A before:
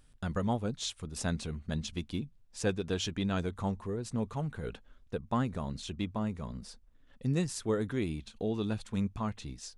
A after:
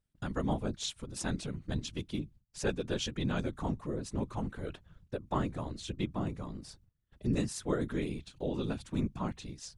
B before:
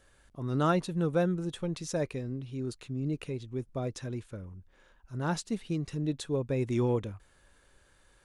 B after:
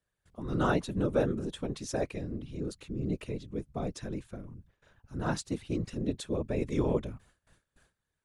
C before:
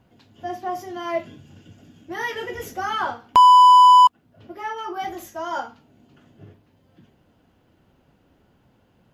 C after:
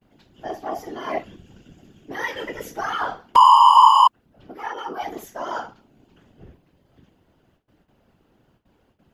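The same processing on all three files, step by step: gate with hold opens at -51 dBFS; whisperiser; gain -1 dB

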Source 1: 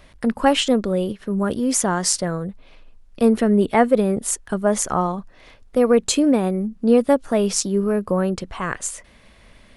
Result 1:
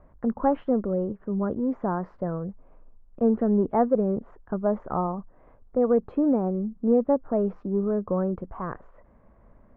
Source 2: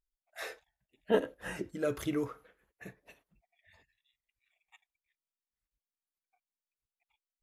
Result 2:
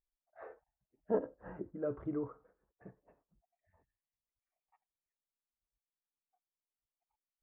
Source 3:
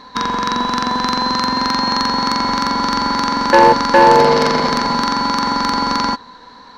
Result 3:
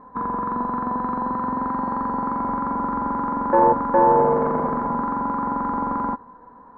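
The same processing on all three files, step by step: in parallel at -9 dB: soft clip -17.5 dBFS; on the sum: LPF 1200 Hz 24 dB/oct; gain -7 dB

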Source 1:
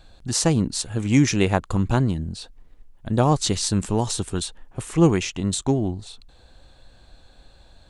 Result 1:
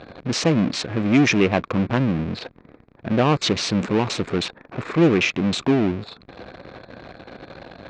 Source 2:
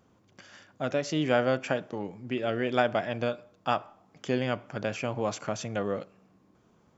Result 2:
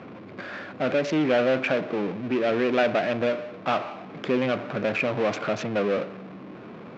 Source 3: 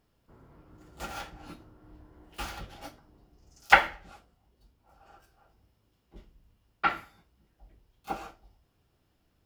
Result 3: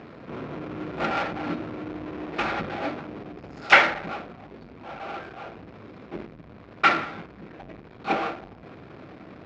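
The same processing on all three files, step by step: Wiener smoothing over 15 samples; power-law curve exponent 0.5; speaker cabinet 180–4900 Hz, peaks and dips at 870 Hz -5 dB, 2400 Hz +6 dB, 4700 Hz -3 dB; gain -2 dB

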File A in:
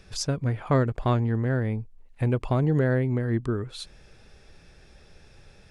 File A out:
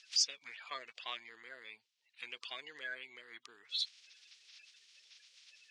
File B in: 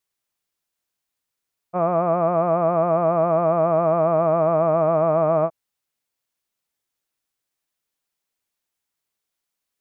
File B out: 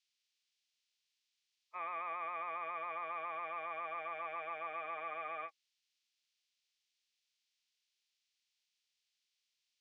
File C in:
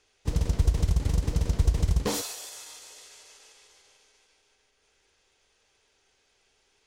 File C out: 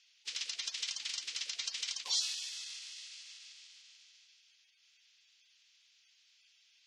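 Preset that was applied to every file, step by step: bin magnitudes rounded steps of 30 dB; Butterworth band-pass 3800 Hz, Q 1.1; gain +4.5 dB

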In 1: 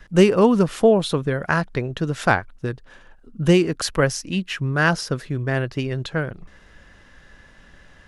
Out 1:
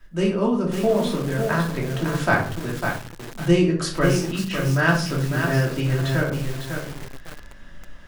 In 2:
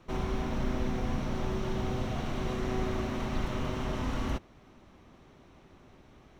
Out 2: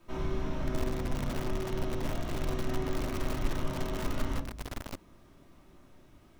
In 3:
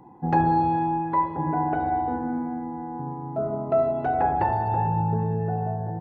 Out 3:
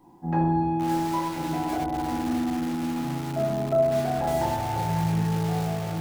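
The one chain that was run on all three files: vocal rider within 5 dB 2 s; bit-crush 11-bit; shoebox room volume 440 m³, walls furnished, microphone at 2.8 m; lo-fi delay 0.551 s, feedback 35%, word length 4-bit, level -5 dB; gain -8 dB

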